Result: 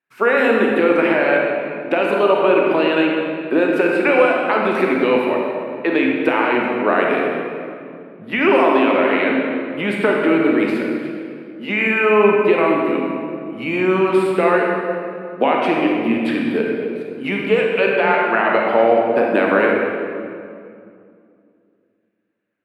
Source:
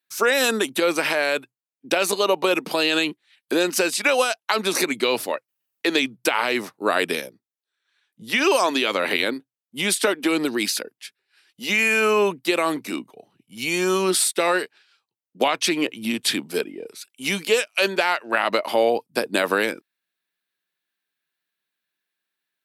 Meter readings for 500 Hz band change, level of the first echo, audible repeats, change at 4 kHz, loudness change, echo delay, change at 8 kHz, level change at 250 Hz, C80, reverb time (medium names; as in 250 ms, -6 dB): +7.5 dB, no echo, no echo, -6.5 dB, +4.5 dB, no echo, under -20 dB, +8.5 dB, 1.5 dB, 2.4 s